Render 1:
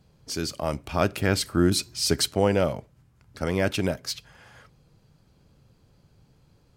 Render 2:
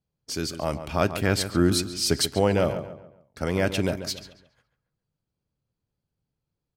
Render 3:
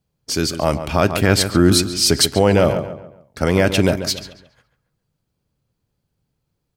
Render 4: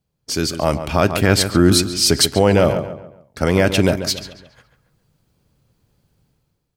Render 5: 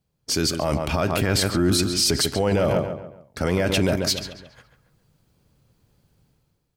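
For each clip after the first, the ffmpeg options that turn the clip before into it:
-filter_complex "[0:a]agate=range=-24dB:threshold=-47dB:ratio=16:detection=peak,asplit=2[a][b];[b]adelay=139,lowpass=f=2.9k:p=1,volume=-10.5dB,asplit=2[c][d];[d]adelay=139,lowpass=f=2.9k:p=1,volume=0.39,asplit=2[e][f];[f]adelay=139,lowpass=f=2.9k:p=1,volume=0.39,asplit=2[g][h];[h]adelay=139,lowpass=f=2.9k:p=1,volume=0.39[i];[c][e][g][i]amix=inputs=4:normalize=0[j];[a][j]amix=inputs=2:normalize=0"
-af "alimiter=level_in=10.5dB:limit=-1dB:release=50:level=0:latency=1,volume=-1dB"
-af "dynaudnorm=f=110:g=9:m=11.5dB,volume=-1dB"
-af "alimiter=limit=-11dB:level=0:latency=1:release=16"

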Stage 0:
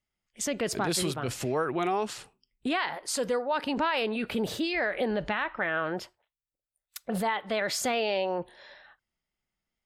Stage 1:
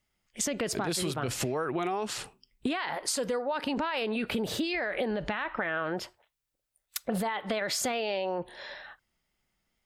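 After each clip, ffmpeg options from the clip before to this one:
-af "alimiter=limit=-21.5dB:level=0:latency=1,acompressor=threshold=-36dB:ratio=6,volume=8dB"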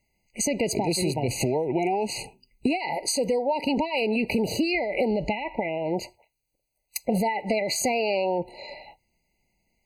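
-af "afftfilt=real='re*eq(mod(floor(b*sr/1024/990),2),0)':imag='im*eq(mod(floor(b*sr/1024/990),2),0)':win_size=1024:overlap=0.75,volume=6.5dB"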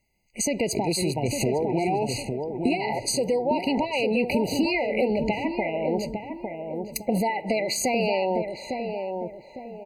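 -filter_complex "[0:a]asplit=2[a][b];[b]adelay=855,lowpass=f=1k:p=1,volume=-4.5dB,asplit=2[c][d];[d]adelay=855,lowpass=f=1k:p=1,volume=0.41,asplit=2[e][f];[f]adelay=855,lowpass=f=1k:p=1,volume=0.41,asplit=2[g][h];[h]adelay=855,lowpass=f=1k:p=1,volume=0.41,asplit=2[i][j];[j]adelay=855,lowpass=f=1k:p=1,volume=0.41[k];[a][c][e][g][i][k]amix=inputs=6:normalize=0"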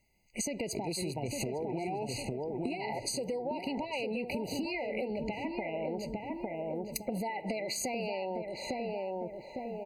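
-af "acompressor=threshold=-33dB:ratio=6"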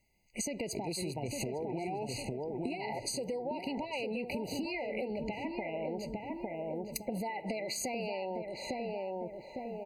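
-af "asuperstop=centerf=1300:order=8:qfactor=2.5,volume=-1.5dB"

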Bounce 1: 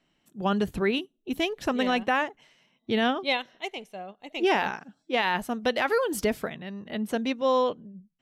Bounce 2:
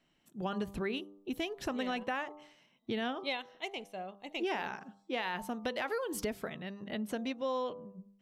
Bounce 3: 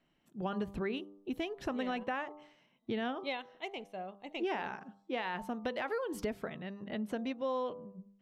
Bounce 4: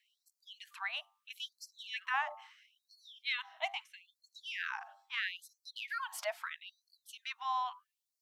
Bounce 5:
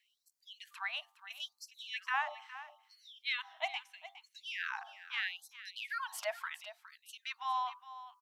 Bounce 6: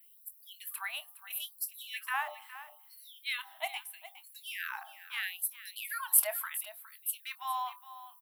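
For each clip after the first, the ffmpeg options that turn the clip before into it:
-af "bandreject=f=99.22:t=h:w=4,bandreject=f=198.44:t=h:w=4,bandreject=f=297.66:t=h:w=4,bandreject=f=396.88:t=h:w=4,bandreject=f=496.1:t=h:w=4,bandreject=f=595.32:t=h:w=4,bandreject=f=694.54:t=h:w=4,bandreject=f=793.76:t=h:w=4,bandreject=f=892.98:t=h:w=4,bandreject=f=992.2:t=h:w=4,bandreject=f=1.09142k:t=h:w=4,bandreject=f=1.19064k:t=h:w=4,bandreject=f=1.28986k:t=h:w=4,acompressor=threshold=-33dB:ratio=2.5,volume=-2.5dB"
-af "highshelf=f=4k:g=-11"
-af "afftfilt=real='re*gte(b*sr/1024,590*pow(4200/590,0.5+0.5*sin(2*PI*0.76*pts/sr)))':imag='im*gte(b*sr/1024,590*pow(4200/590,0.5+0.5*sin(2*PI*0.76*pts/sr)))':win_size=1024:overlap=0.75,volume=6dB"
-af "aecho=1:1:412:0.188"
-filter_complex "[0:a]asplit=2[a][b];[b]adelay=25,volume=-14dB[c];[a][c]amix=inputs=2:normalize=0,aexciter=amount=10.8:drive=9.9:freq=9.3k"

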